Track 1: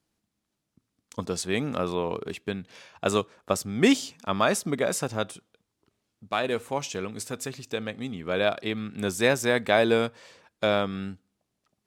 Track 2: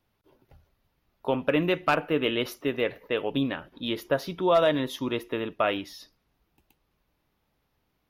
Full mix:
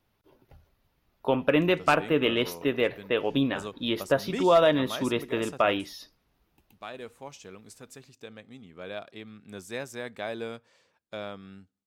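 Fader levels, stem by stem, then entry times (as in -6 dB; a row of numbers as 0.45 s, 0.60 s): -13.5 dB, +1.5 dB; 0.50 s, 0.00 s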